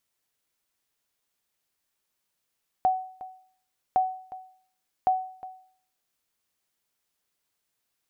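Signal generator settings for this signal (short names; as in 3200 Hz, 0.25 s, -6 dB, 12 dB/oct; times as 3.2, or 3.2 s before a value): sonar ping 749 Hz, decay 0.54 s, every 1.11 s, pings 3, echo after 0.36 s, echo -17 dB -15.5 dBFS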